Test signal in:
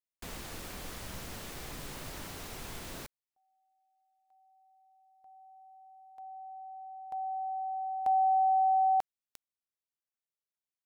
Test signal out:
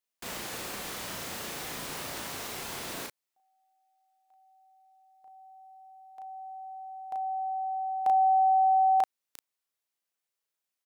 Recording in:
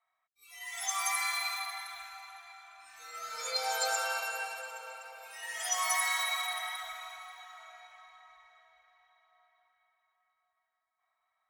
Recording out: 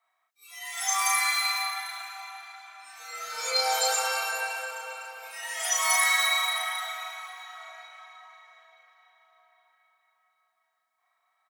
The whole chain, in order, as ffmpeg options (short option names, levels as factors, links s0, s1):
-filter_complex "[0:a]highpass=f=320:p=1,asplit=2[s0][s1];[s1]adelay=35,volume=0.794[s2];[s0][s2]amix=inputs=2:normalize=0,volume=1.78"